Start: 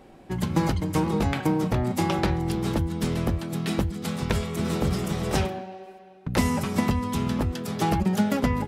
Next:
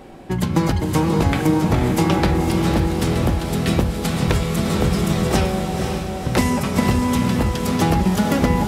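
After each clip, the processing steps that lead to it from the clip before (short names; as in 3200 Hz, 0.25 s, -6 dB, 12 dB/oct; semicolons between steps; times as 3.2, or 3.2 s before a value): de-hum 206.8 Hz, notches 27; in parallel at +2 dB: compressor, threshold -31 dBFS, peak gain reduction 13.5 dB; on the sum: diffused feedback echo 0.517 s, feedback 57%, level -5 dB; gain +2.5 dB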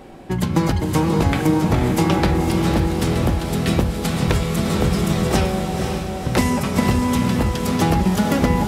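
nothing audible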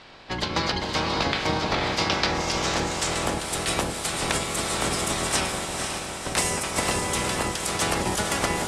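spectral limiter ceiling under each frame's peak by 19 dB; low-pass sweep 4500 Hz -> 9100 Hz, 1.87–3.44; notches 50/100/150/200/250/300/350/400/450/500 Hz; gain -8 dB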